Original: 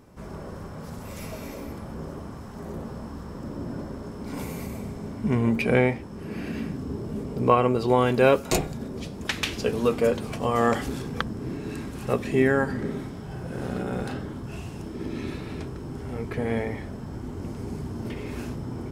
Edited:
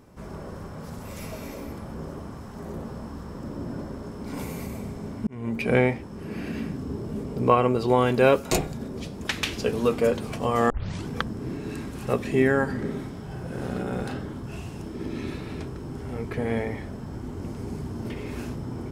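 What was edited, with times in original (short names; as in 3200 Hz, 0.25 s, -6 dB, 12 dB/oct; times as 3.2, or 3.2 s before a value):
5.27–5.75 fade in
10.7 tape start 0.38 s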